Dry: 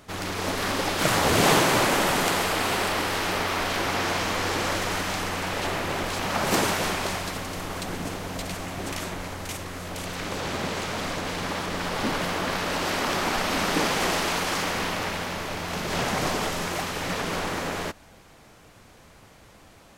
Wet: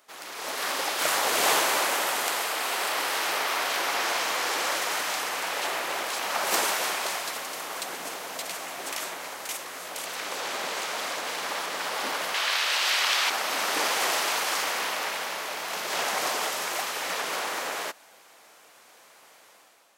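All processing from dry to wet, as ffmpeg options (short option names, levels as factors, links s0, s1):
-filter_complex "[0:a]asettb=1/sr,asplit=3[s0][s1][s2];[s0]atrim=end=12.344[s3];[s1]atrim=start=12.34:end=13.3,asetpts=PTS-STARTPTS,afade=t=in:d=0.004:c=qsin,afade=t=out:st=0.956:d=0.004:c=qsin,highpass=f=740:p=1,equalizer=f=3300:w=0.64:g=9.5[s4];[s2]atrim=start=13.296[s5];[s3][s4]acrossfade=d=0.004:c1=hsin:c2=qsin[s6];[s6][s5]acrossfade=d=0.004:c1=qsin:c2=hsin,highpass=570,highshelf=f=8600:g=7,dynaudnorm=f=140:g=7:m=2.66,volume=0.376"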